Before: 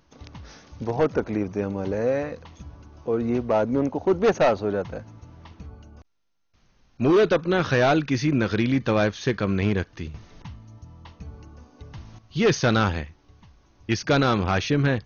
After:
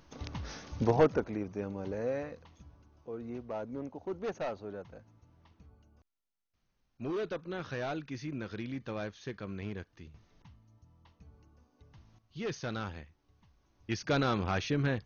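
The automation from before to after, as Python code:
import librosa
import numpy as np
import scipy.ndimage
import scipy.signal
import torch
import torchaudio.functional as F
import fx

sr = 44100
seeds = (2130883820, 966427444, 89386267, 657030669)

y = fx.gain(x, sr, db=fx.line((0.85, 1.5), (1.34, -10.5), (2.23, -10.5), (3.12, -17.0), (12.93, -17.0), (14.16, -9.0)))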